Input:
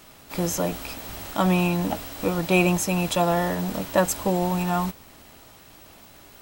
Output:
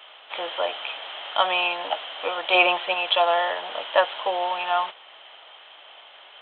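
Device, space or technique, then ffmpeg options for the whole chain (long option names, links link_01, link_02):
musical greeting card: -filter_complex "[0:a]aresample=8000,aresample=44100,highpass=frequency=580:width=0.5412,highpass=frequency=580:width=1.3066,equalizer=frequency=3100:width_type=o:width=0.24:gain=11.5,asettb=1/sr,asplit=3[link_01][link_02][link_03];[link_01]atrim=end=2.544[link_04];[link_02]atrim=start=2.54:end=2.94,asetpts=PTS-STARTPTS,afade=type=in:duration=0.004:curve=qsin,afade=type=out:start_time=0.396:duration=0.004:curve=qsin,aecho=1:1:5.7:0.75,atrim=end_sample=17640[link_05];[link_03]atrim=start=2.936[link_06];[link_04][link_05]acrossfade=duration=0.004:curve1=hsin:curve2=qsin[link_07];[link_07][link_06]acrossfade=duration=0.004:curve1=qsin:curve2=hsin,volume=4dB"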